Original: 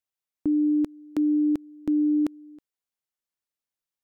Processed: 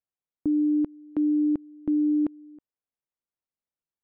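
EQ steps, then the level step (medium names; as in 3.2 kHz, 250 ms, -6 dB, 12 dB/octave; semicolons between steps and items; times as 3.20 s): low-pass 1.1 kHz 6 dB/octave; distance through air 260 m; 0.0 dB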